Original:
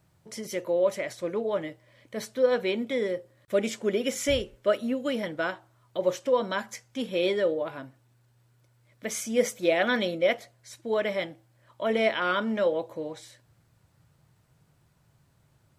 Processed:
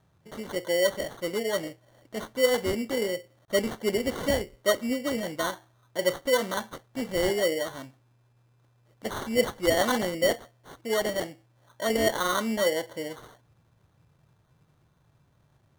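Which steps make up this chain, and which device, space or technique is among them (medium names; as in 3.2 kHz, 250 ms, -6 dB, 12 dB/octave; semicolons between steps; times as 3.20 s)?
crushed at another speed (playback speed 0.5×; sample-and-hold 35×; playback speed 2×)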